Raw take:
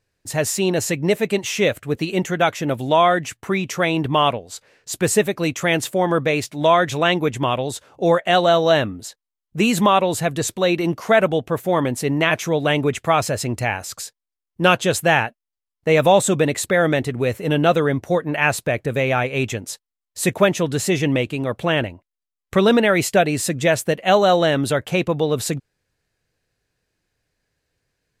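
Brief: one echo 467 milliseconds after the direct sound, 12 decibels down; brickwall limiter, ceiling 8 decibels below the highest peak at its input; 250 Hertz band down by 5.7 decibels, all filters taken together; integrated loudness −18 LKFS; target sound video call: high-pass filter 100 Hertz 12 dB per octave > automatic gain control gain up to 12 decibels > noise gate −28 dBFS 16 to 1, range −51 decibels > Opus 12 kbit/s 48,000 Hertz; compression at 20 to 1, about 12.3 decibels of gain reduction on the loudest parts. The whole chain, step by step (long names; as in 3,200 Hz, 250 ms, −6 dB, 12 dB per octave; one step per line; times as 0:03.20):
parametric band 250 Hz −8.5 dB
downward compressor 20 to 1, threshold −23 dBFS
brickwall limiter −19.5 dBFS
high-pass filter 100 Hz 12 dB per octave
single-tap delay 467 ms −12 dB
automatic gain control gain up to 12 dB
noise gate −28 dBFS 16 to 1, range −51 dB
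level +4.5 dB
Opus 12 kbit/s 48,000 Hz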